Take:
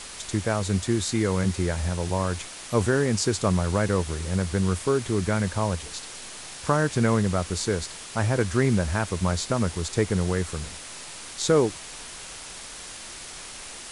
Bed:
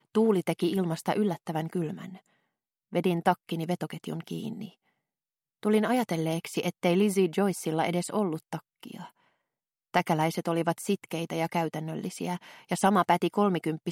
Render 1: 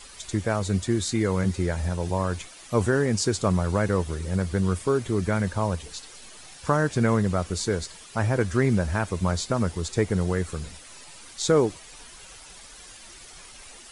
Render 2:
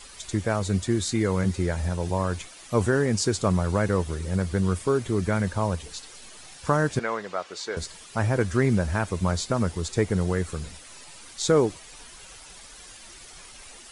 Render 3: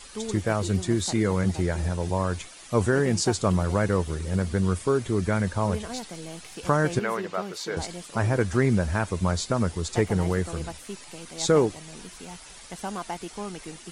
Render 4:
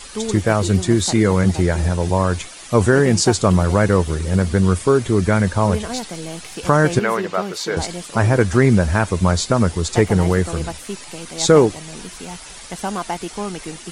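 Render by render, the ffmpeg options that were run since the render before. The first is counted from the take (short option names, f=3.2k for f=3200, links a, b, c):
-af "afftdn=nr=10:nf=-40"
-filter_complex "[0:a]asettb=1/sr,asplit=3[a][b][c];[a]atrim=end=6.994[d];[b]atrim=start=6.99:end=7.77,asetpts=PTS-STARTPTS,afade=t=in:d=0.004:c=qsin,afade=t=out:st=0.776:d=0.004:c=qsin,highpass=570,lowpass=4.7k[e];[c]atrim=start=7.766[f];[d][e]acrossfade=d=0.004:c1=hsin:c2=qsin[g];[g][f]acrossfade=d=0.004:c1=qsin:c2=hsin"
-filter_complex "[1:a]volume=-10.5dB[a];[0:a][a]amix=inputs=2:normalize=0"
-af "volume=8.5dB,alimiter=limit=-1dB:level=0:latency=1"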